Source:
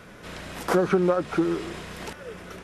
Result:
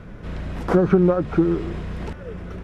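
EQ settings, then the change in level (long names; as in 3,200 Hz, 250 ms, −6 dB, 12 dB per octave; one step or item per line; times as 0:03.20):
RIAA equalisation playback
0.0 dB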